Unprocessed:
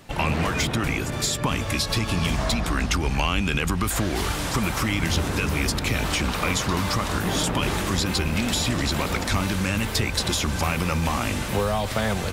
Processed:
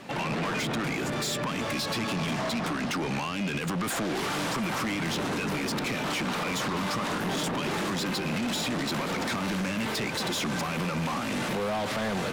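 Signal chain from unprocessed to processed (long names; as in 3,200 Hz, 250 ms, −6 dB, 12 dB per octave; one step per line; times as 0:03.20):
high-pass filter 150 Hz 24 dB per octave
high-shelf EQ 6,000 Hz −11 dB
brickwall limiter −20.5 dBFS, peak gain reduction 9 dB
soft clipping −32 dBFS, distortion −9 dB
on a send: backwards echo 274 ms −22.5 dB
on the sum: level +5.5 dB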